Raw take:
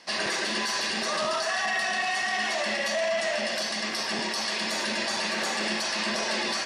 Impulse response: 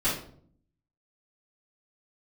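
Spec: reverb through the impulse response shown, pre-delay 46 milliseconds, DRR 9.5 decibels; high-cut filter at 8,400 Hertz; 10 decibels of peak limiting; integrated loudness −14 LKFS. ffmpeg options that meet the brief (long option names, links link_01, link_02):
-filter_complex "[0:a]lowpass=8400,alimiter=level_in=3dB:limit=-24dB:level=0:latency=1,volume=-3dB,asplit=2[link_01][link_02];[1:a]atrim=start_sample=2205,adelay=46[link_03];[link_02][link_03]afir=irnorm=-1:irlink=0,volume=-20.5dB[link_04];[link_01][link_04]amix=inputs=2:normalize=0,volume=19.5dB"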